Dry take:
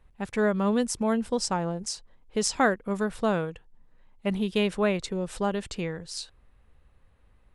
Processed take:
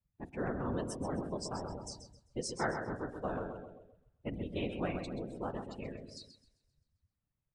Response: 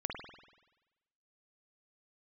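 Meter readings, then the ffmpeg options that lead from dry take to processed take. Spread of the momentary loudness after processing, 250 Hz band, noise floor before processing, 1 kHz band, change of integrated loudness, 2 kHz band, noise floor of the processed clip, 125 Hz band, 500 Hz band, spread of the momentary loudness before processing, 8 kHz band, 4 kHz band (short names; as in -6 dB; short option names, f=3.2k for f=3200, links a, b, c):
13 LU, -12.0 dB, -61 dBFS, -10.5 dB, -11.5 dB, -12.0 dB, under -85 dBFS, -7.5 dB, -11.5 dB, 11 LU, -14.5 dB, -13.5 dB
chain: -filter_complex "[0:a]aeval=exprs='val(0)*sin(2*PI*65*n/s)':c=same,asplit=2[a][b];[1:a]atrim=start_sample=2205[c];[b][c]afir=irnorm=-1:irlink=0,volume=-7.5dB[d];[a][d]amix=inputs=2:normalize=0,afftfilt=real='hypot(re,im)*cos(2*PI*random(0))':imag='hypot(re,im)*sin(2*PI*random(1))':win_size=512:overlap=0.75,aecho=1:1:131|262|393|524|655|786|917:0.447|0.246|0.135|0.0743|0.0409|0.0225|0.0124,afftdn=nr=17:nf=-42,volume=-6.5dB"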